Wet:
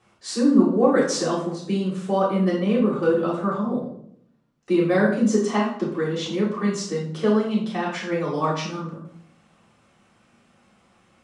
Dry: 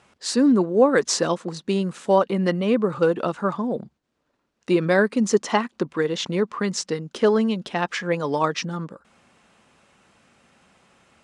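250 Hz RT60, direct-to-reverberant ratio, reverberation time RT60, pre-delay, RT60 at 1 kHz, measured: 0.95 s, −7.5 dB, 0.70 s, 3 ms, 0.65 s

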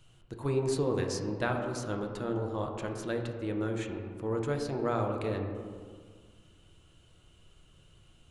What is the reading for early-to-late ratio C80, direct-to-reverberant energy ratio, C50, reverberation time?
6.5 dB, 2.0 dB, 4.5 dB, 1.8 s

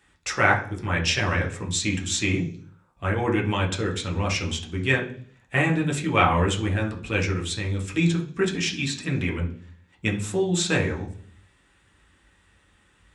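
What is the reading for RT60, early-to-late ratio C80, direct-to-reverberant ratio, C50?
0.45 s, 16.0 dB, −1.5 dB, 10.5 dB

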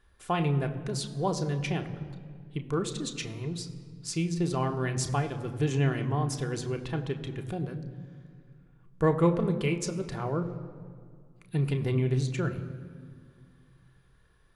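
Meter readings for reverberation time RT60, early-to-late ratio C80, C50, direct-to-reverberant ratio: 2.1 s, 13.0 dB, 12.0 dB, 4.5 dB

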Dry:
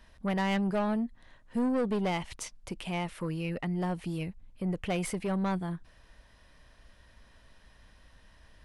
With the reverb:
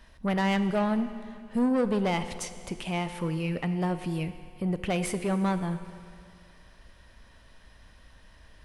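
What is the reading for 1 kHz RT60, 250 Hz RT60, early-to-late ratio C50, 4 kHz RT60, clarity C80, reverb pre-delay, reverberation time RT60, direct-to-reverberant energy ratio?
2.4 s, 2.4 s, 11.0 dB, 2.4 s, 12.0 dB, 14 ms, 2.4 s, 10.0 dB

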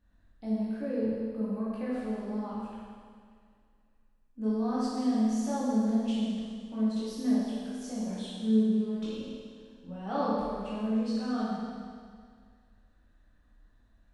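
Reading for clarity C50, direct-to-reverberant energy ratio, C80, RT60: −3.0 dB, −9.5 dB, −1.0 dB, 2.0 s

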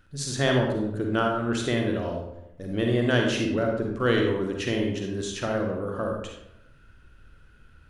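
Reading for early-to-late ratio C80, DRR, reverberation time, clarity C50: 5.5 dB, 0.5 dB, 0.85 s, 2.0 dB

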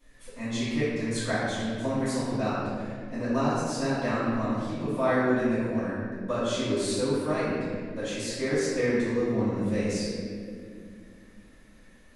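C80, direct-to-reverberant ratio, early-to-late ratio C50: −0.5 dB, −14.5 dB, −3.0 dB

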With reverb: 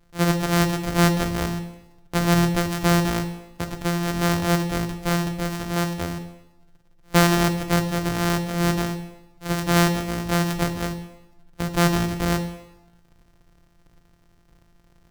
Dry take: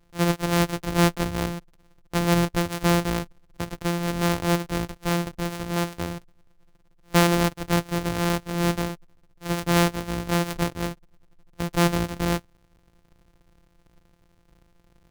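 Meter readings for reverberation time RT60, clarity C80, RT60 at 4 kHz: 0.90 s, 12.0 dB, 0.85 s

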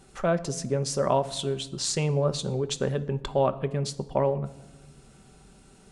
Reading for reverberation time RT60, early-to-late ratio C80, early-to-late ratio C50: 1.0 s, 19.5 dB, 17.0 dB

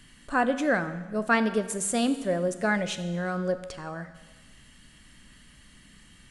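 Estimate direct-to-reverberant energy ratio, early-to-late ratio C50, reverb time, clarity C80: 9.5 dB, 12.0 dB, 1.3 s, 13.5 dB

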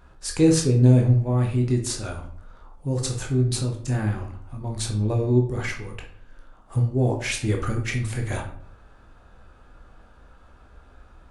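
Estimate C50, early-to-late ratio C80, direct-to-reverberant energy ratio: 8.5 dB, 12.5 dB, 1.5 dB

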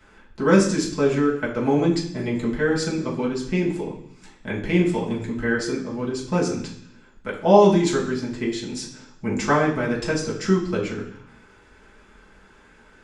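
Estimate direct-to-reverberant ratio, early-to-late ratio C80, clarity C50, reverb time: −6.0 dB, 10.0 dB, 7.0 dB, 0.65 s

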